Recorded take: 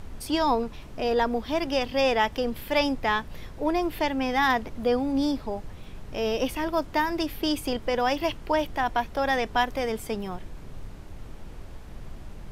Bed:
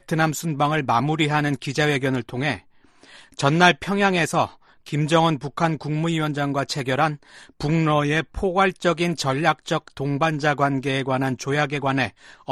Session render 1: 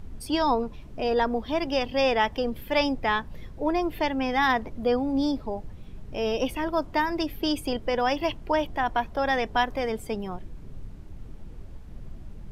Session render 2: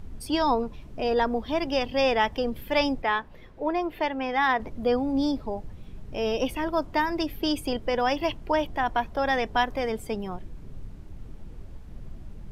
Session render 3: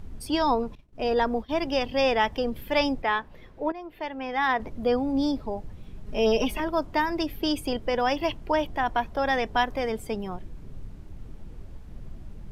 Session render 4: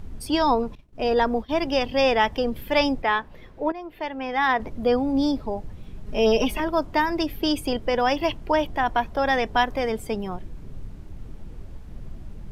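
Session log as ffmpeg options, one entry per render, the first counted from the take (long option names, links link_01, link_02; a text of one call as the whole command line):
ffmpeg -i in.wav -af "afftdn=noise_reduction=9:noise_floor=-42" out.wav
ffmpeg -i in.wav -filter_complex "[0:a]asettb=1/sr,asplit=3[link_01][link_02][link_03];[link_01]atrim=end=3.024[link_04];[link_02]atrim=start=3.02:end=4.6,asetpts=PTS-STARTPTS,afade=type=in:duration=0.004:curve=qsin,afade=type=out:start_time=1.576:duration=0.004:curve=qsin,bass=frequency=250:gain=-10,treble=frequency=4000:gain=-9[link_05];[link_03]atrim=start=4.596[link_06];[link_04][link_05]acrossfade=duration=0.004:curve1=hsin:curve2=qsin[link_07];[link_07][link_06]acrossfade=duration=0.004:curve1=qsin:curve2=hsin" out.wav
ffmpeg -i in.wav -filter_complex "[0:a]asettb=1/sr,asplit=3[link_01][link_02][link_03];[link_01]atrim=end=0.754[link_04];[link_02]atrim=start=0.75:end=1.59,asetpts=PTS-STARTPTS,afade=type=in:duration=0.004:curve=qsin,afade=type=out:start_time=0.836:duration=0.004:curve=qsin,agate=range=-33dB:threshold=-31dB:ratio=3:release=100:detection=peak[link_05];[link_03]atrim=start=1.586[link_06];[link_04][link_05]acrossfade=duration=0.004:curve1=hsin:curve2=qsin[link_07];[link_07][link_06]acrossfade=duration=0.004:curve1=qsin:curve2=hsin,asettb=1/sr,asplit=3[link_08][link_09][link_10];[link_08]atrim=end=6.064[link_11];[link_09]atrim=start=6.06:end=6.6,asetpts=PTS-STARTPTS,afade=type=in:duration=0.004:curve=qsin,afade=type=out:start_time=0.536:duration=0.004:curve=qsin,aecho=1:1:4.8:0.98,atrim=end_sample=23814[link_12];[link_10]atrim=start=6.596[link_13];[link_11][link_12]acrossfade=duration=0.004:curve1=hsin:curve2=qsin[link_14];[link_14][link_13]acrossfade=duration=0.004:curve1=qsin:curve2=hsin,asplit=2[link_15][link_16];[link_15]atrim=end=3.72,asetpts=PTS-STARTPTS,afade=type=out:start_time=3.716:duration=0.004:curve=hsin:silence=0.177828[link_17];[link_16]atrim=start=3.72,asetpts=PTS-STARTPTS,afade=type=in:duration=0.89:silence=0.177828[link_18];[link_17][link_18]concat=n=2:v=0:a=1" out.wav
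ffmpeg -i in.wav -af "volume=3dB" out.wav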